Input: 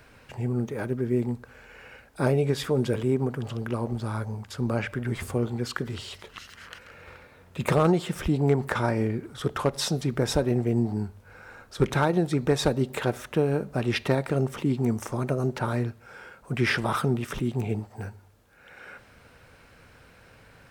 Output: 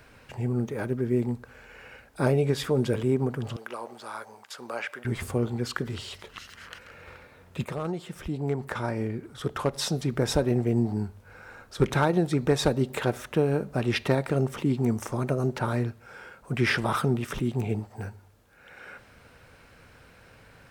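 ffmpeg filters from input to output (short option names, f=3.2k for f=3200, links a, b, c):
-filter_complex "[0:a]asettb=1/sr,asplit=3[a][b][c];[a]atrim=end=3.564[d];[b]atrim=start=3.56:end=5.05,asetpts=PTS-STARTPTS,afade=t=in:d=0.004:c=qsin,afade=t=out:st=1.486:d=0.004:c=qsin,highpass=640[e];[c]atrim=start=5.046[f];[d][e]acrossfade=d=0.004:c1=hsin:c2=qsin[g];[g][f]acrossfade=d=0.004:c1=qsin:c2=hsin,asplit=2[h][i];[h]atrim=end=7.65,asetpts=PTS-STARTPTS,afade=t=out:st=7.646:d=0.004:c=hsin:silence=0.237137[j];[i]atrim=start=7.65,asetpts=PTS-STARTPTS,afade=t=in:d=2.71:silence=0.237137[k];[j][k]concat=n=2:v=0:a=1"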